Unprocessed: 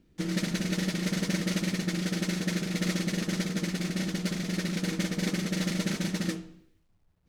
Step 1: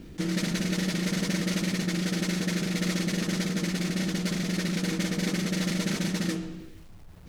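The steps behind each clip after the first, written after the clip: fast leveller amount 50%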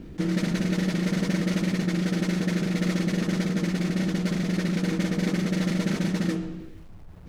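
high shelf 2500 Hz -10 dB; gain +3.5 dB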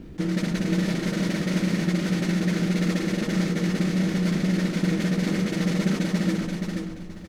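feedback echo 0.477 s, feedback 26%, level -4 dB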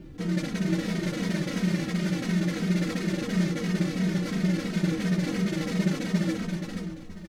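endless flanger 2.9 ms -2.9 Hz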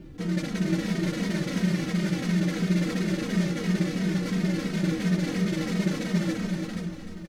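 echo 0.301 s -8.5 dB

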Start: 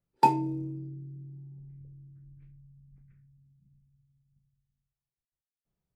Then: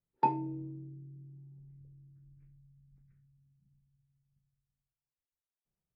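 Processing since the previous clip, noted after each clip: LPF 2200 Hz 12 dB/oct; gain -6.5 dB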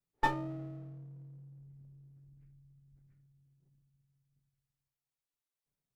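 minimum comb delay 7 ms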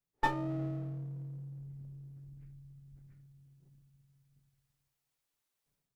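AGC gain up to 10 dB; gain -2 dB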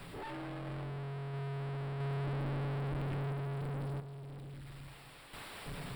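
infinite clipping; random-step tremolo 1.5 Hz, depth 70%; running mean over 7 samples; gain +7 dB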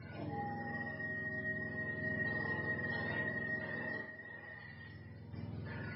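spectrum mirrored in octaves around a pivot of 510 Hz; Schroeder reverb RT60 0.38 s, combs from 26 ms, DRR 2 dB; MP3 24 kbps 12000 Hz

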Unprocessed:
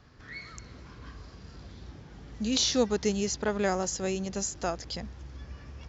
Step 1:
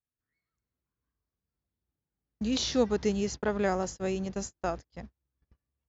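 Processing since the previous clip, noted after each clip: high shelf 4000 Hz -10 dB; gate -36 dBFS, range -42 dB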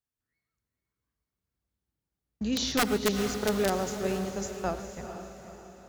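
wrapped overs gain 18 dB; diffused feedback echo 0.467 s, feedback 48%, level -9 dB; non-linear reverb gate 0.16 s rising, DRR 12 dB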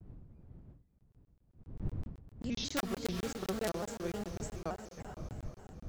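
wind noise 120 Hz -38 dBFS; crackling interface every 0.13 s, samples 1024, zero, from 0.99; shaped vibrato square 3.4 Hz, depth 160 cents; gain -8 dB

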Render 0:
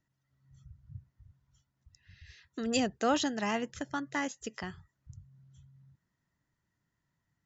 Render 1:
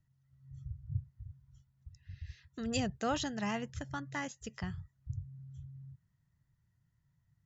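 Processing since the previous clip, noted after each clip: resonant low shelf 190 Hz +12.5 dB, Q 1.5; gain -4.5 dB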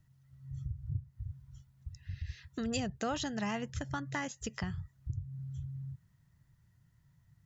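compressor 2.5:1, threshold -44 dBFS, peak gain reduction 10.5 dB; gain +8 dB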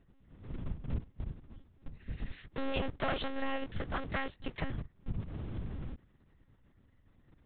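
cycle switcher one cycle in 2, inverted; monotone LPC vocoder at 8 kHz 270 Hz; gain +2 dB

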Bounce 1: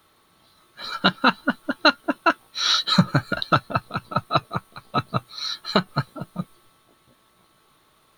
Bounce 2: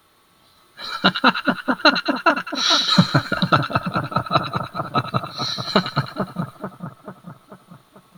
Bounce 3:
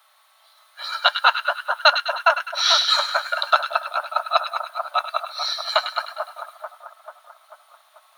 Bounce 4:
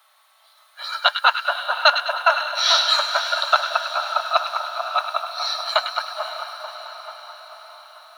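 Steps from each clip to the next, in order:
split-band echo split 1400 Hz, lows 0.44 s, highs 0.102 s, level -7.5 dB; gain +2.5 dB
steep high-pass 590 Hz 72 dB/oct
diffused feedback echo 0.531 s, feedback 59%, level -10 dB

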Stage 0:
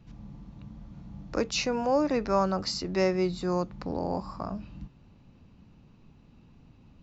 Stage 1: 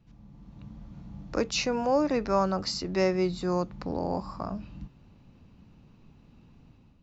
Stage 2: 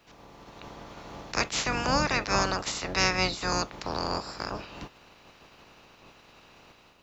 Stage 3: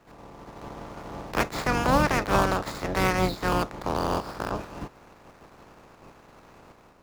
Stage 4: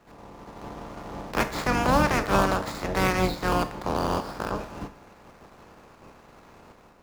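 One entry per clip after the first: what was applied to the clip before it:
AGC gain up to 8 dB; gain -7.5 dB
spectral limiter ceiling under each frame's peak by 29 dB
median filter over 15 samples; gain +5.5 dB
reverb, pre-delay 3 ms, DRR 9 dB

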